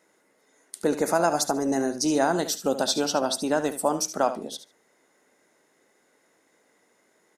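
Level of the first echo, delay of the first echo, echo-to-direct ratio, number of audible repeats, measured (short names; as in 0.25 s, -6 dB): -12.0 dB, 73 ms, -12.0 dB, 2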